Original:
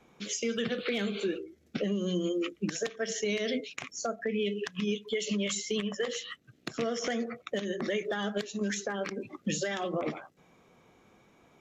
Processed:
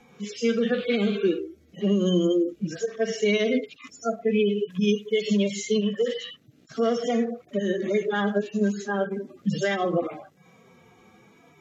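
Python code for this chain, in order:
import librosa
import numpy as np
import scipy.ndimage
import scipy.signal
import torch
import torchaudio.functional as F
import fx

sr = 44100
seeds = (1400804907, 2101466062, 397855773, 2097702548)

y = fx.hpss_only(x, sr, part='harmonic')
y = fx.high_shelf(y, sr, hz=5500.0, db=7.5, at=(4.7, 5.43))
y = y * 10.0 ** (9.0 / 20.0)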